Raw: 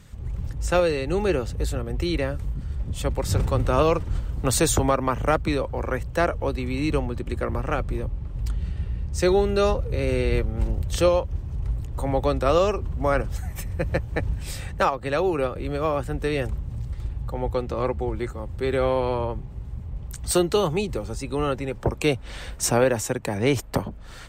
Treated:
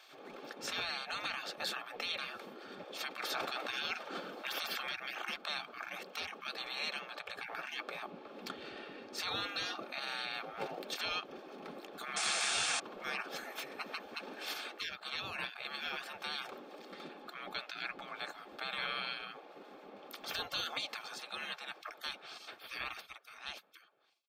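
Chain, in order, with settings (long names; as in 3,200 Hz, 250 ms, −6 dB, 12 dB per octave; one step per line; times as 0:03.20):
fade-out on the ending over 3.03 s
gate on every frequency bin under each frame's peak −25 dB weak
octave-band graphic EQ 125/250/1,000/4,000/8,000 Hz −4/−4/+3/+6/−11 dB
brickwall limiter −28 dBFS, peak gain reduction 11 dB
sound drawn into the spectrogram noise, 0:12.16–0:12.80, 650–9,600 Hz −36 dBFS
high-shelf EQ 6,800 Hz −7 dB
notch comb filter 990 Hz
level +4.5 dB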